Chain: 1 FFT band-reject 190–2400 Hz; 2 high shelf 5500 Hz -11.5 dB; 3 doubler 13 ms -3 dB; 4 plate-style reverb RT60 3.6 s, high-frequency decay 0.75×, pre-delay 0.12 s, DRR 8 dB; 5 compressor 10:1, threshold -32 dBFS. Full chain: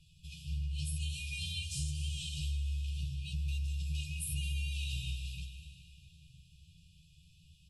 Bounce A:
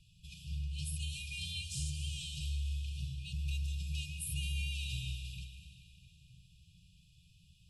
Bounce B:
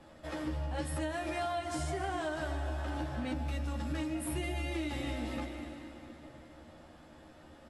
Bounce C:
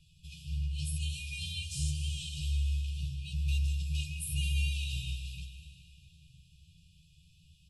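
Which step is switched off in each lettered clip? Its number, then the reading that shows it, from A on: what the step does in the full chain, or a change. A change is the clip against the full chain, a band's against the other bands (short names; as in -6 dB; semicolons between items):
3, loudness change -1.5 LU; 1, 250 Hz band +17.0 dB; 5, momentary loudness spread change +1 LU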